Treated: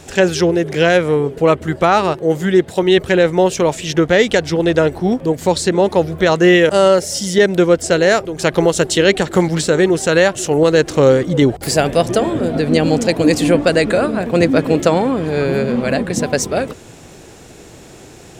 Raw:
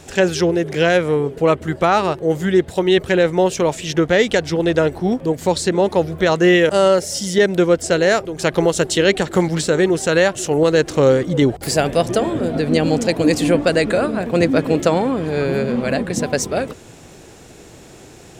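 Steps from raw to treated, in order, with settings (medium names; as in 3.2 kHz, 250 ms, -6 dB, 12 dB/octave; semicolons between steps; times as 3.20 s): 2.14–2.83 s: high-pass 110 Hz; trim +2.5 dB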